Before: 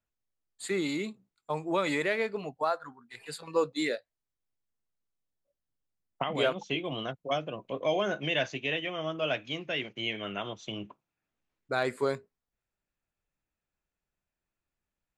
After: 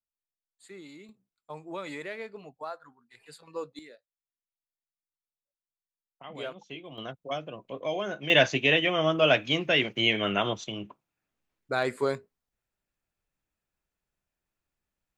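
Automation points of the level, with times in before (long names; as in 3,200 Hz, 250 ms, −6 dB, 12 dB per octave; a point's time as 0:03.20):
−16 dB
from 0:01.09 −9 dB
from 0:03.79 −19.5 dB
from 0:06.24 −10 dB
from 0:06.98 −3 dB
from 0:08.30 +9 dB
from 0:10.64 +1.5 dB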